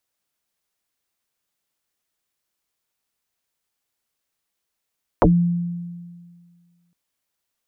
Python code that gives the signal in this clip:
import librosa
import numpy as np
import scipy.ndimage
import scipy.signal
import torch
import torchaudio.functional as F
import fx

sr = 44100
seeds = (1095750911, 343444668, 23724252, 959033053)

y = fx.fm2(sr, length_s=1.71, level_db=-9, carrier_hz=173.0, ratio=0.79, index=9.5, index_s=0.14, decay_s=1.86, shape='exponential')